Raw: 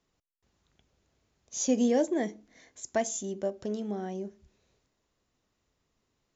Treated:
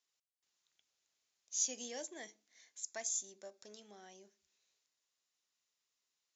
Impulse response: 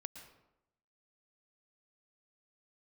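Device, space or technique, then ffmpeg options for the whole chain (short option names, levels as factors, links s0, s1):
piezo pickup straight into a mixer: -filter_complex "[0:a]asettb=1/sr,asplit=3[s0][s1][s2];[s0]atrim=end=2.874[s3];[s1]atrim=start=2.87:end=3.77,asetpts=PTS-STARTPTS,afade=t=in:d=0.004:c=qsin,afade=t=out:st=0.896:d=0.004:c=qsin,bandreject=f=3000:w=5.5[s4];[s2]atrim=start=3.766[s5];[s3][s4]acrossfade=d=0.004:c1=hsin:c2=qsin[s6];[s6][s5]acrossfade=d=0.004:c1=qsin:c2=hsin,lowpass=6900,aderivative,volume=1.26"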